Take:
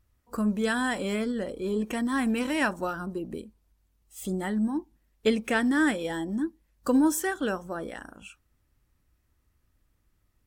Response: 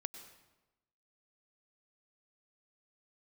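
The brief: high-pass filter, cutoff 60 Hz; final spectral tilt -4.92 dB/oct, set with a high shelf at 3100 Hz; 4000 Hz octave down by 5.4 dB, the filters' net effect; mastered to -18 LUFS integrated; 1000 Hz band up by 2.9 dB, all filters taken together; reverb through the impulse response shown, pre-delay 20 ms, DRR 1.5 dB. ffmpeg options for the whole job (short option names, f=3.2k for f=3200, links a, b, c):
-filter_complex "[0:a]highpass=60,equalizer=f=1k:t=o:g=4.5,highshelf=f=3.1k:g=-6.5,equalizer=f=4k:t=o:g=-3,asplit=2[a][b];[1:a]atrim=start_sample=2205,adelay=20[c];[b][c]afir=irnorm=-1:irlink=0,volume=0.5dB[d];[a][d]amix=inputs=2:normalize=0,volume=8dB"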